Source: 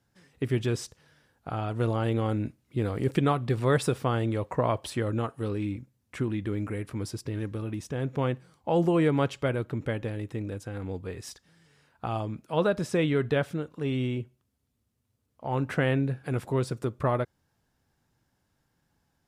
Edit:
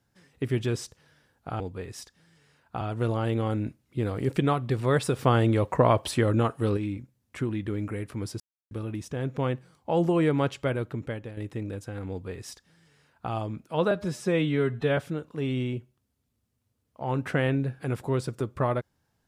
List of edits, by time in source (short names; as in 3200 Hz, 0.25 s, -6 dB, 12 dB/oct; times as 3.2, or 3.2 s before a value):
3.98–5.56 gain +5.5 dB
7.19–7.5 mute
9.64–10.16 fade out, to -9 dB
10.89–12.1 copy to 1.6
12.7–13.41 stretch 1.5×